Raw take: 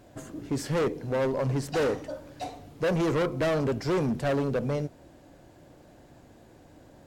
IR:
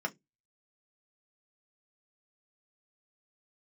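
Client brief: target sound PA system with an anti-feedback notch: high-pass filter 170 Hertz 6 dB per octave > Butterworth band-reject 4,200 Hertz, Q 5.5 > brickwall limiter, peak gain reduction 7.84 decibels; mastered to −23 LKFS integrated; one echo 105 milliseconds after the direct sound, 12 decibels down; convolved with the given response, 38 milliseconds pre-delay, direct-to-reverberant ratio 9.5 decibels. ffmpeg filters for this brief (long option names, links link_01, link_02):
-filter_complex "[0:a]aecho=1:1:105:0.251,asplit=2[link_01][link_02];[1:a]atrim=start_sample=2205,adelay=38[link_03];[link_02][link_03]afir=irnorm=-1:irlink=0,volume=-14dB[link_04];[link_01][link_04]amix=inputs=2:normalize=0,highpass=frequency=170:poles=1,asuperstop=centerf=4200:order=8:qfactor=5.5,volume=10.5dB,alimiter=limit=-13.5dB:level=0:latency=1"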